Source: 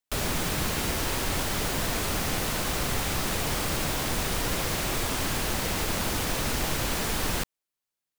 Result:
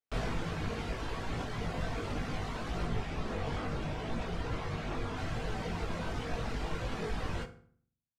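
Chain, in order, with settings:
reverb reduction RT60 1.9 s
0:02.85–0:05.17: high-shelf EQ 5,400 Hz −5.5 dB
multi-voice chorus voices 2, 0.71 Hz, delay 19 ms, depth 1.1 ms
head-to-tape spacing loss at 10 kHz 23 dB
convolution reverb RT60 0.55 s, pre-delay 3 ms, DRR 5.5 dB

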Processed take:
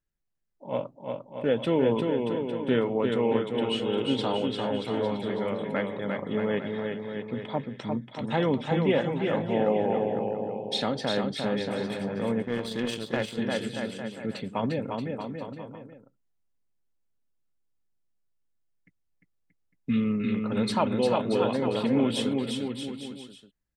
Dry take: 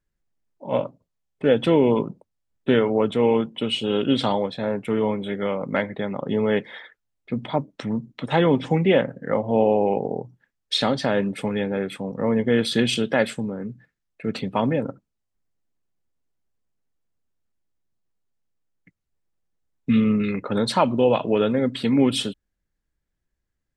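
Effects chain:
bouncing-ball delay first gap 350 ms, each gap 0.8×, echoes 5
0:12.42–0:13.38: power curve on the samples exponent 1.4
level −7 dB

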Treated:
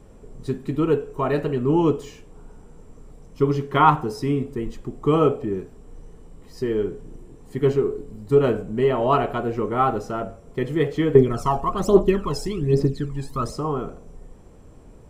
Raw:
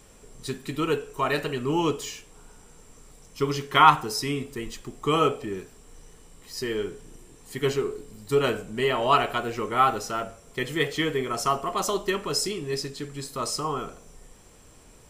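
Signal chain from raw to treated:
tilt shelving filter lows +10 dB, about 1,300 Hz
0:11.15–0:13.52: phase shifter 1.2 Hz, delay 1.3 ms, feedback 71%
level −2 dB

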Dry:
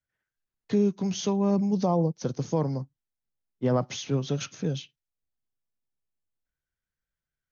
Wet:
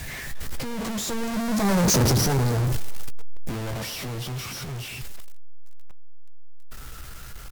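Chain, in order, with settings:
sign of each sample alone
source passing by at 0:01.97, 46 m/s, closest 6.5 metres
dynamic equaliser 2,900 Hz, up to −5 dB, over −55 dBFS, Q 1.5
in parallel at +0.5 dB: downward compressor 12 to 1, threshold −45 dBFS, peak gain reduction 15 dB
on the sum: low-shelf EQ 110 Hz +9 dB
double-tracking delay 15 ms −9.5 dB
on a send: feedback echo with a band-pass in the loop 112 ms, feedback 52%, band-pass 650 Hz, level −11 dB
on the sum: sine wavefolder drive 7 dB, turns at −17.5 dBFS
bit reduction 8 bits
level +1 dB

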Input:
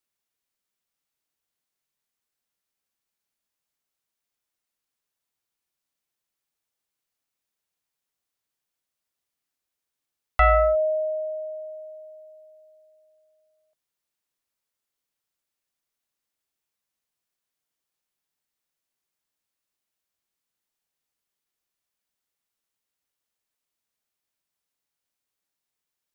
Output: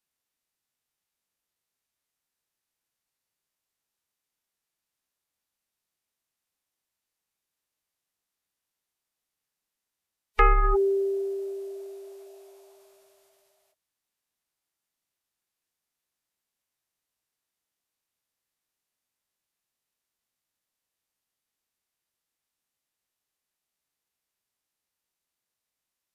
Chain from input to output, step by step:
phase-vocoder pitch shift with formants kept −8 semitones

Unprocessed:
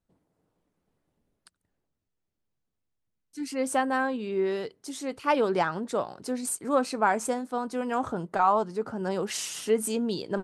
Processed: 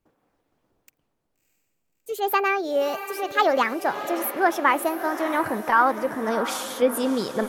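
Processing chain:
gliding playback speed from 170% → 109%
feedback delay with all-pass diffusion 643 ms, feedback 51%, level −11 dB
dynamic equaliser 7,800 Hz, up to −7 dB, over −51 dBFS, Q 1.3
level +4.5 dB

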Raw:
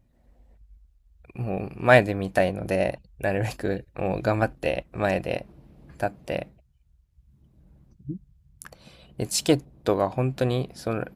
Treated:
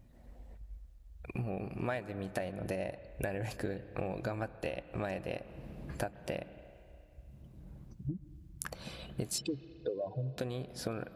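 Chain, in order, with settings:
0:09.38–0:10.38: expanding power law on the bin magnitudes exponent 3.2
downward compressor 12 to 1, threshold −38 dBFS, peak gain reduction 27.5 dB
on a send: convolution reverb RT60 2.7 s, pre-delay 128 ms, DRR 15 dB
on the sum: level +4.5 dB

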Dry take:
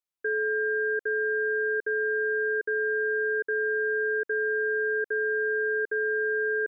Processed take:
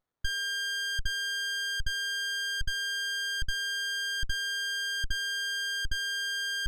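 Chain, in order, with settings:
inverse Chebyshev band-stop filter 380–820 Hz, stop band 40 dB
parametric band 330 Hz −10 dB 0.2 octaves
windowed peak hold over 17 samples
level +8.5 dB

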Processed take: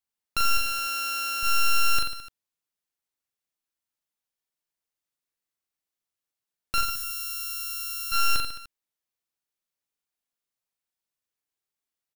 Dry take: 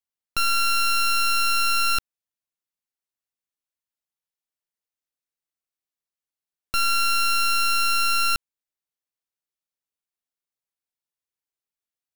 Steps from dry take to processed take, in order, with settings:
0:00.57–0:01.43: high-pass filter 57 Hz
0:06.81–0:08.12: first-order pre-emphasis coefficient 0.97
brickwall limiter −22.5 dBFS, peak gain reduction 8 dB
reverse bouncing-ball delay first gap 40 ms, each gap 1.2×, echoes 5

